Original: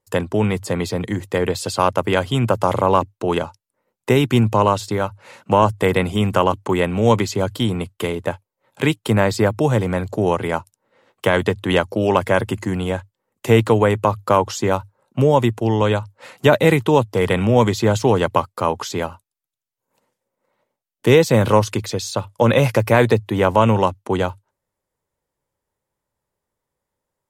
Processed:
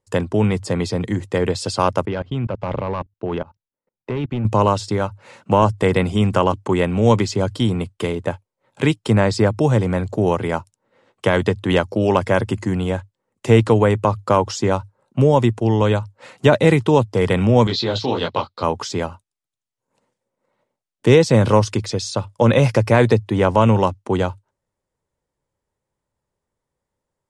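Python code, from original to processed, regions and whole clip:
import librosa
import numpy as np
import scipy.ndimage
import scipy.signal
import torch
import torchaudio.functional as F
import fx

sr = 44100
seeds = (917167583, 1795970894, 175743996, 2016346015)

y = fx.chain(x, sr, fx.clip_hard(threshold_db=-11.5),
    fx.level_steps(step_db=23),
    fx.air_absorb(metres=220.0), at=(2.05, 4.45))
y = fx.chain(y, sr, fx.lowpass_res(hz=4000.0, q=6.1),
    fx.low_shelf(hz=160.0, db=-6.0),
    fx.detune_double(cents=49), at=(17.67, 18.63))
y = fx.dynamic_eq(y, sr, hz=5200.0, q=4.3, threshold_db=-50.0, ratio=4.0, max_db=6)
y = scipy.signal.sosfilt(scipy.signal.butter(6, 10000.0, 'lowpass', fs=sr, output='sos'), y)
y = fx.low_shelf(y, sr, hz=420.0, db=4.5)
y = y * librosa.db_to_amplitude(-2.0)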